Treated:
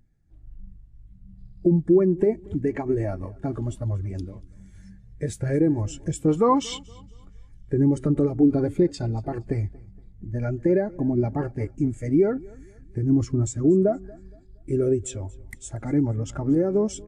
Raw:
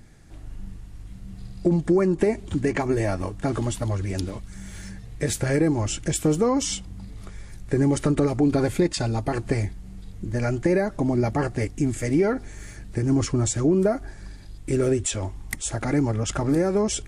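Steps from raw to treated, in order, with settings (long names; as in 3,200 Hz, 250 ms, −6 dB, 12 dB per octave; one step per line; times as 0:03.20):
0:06.28–0:06.79: flat-topped bell 1,800 Hz +8.5 dB 2.7 octaves
repeating echo 234 ms, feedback 48%, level −16 dB
every bin expanded away from the loudest bin 1.5 to 1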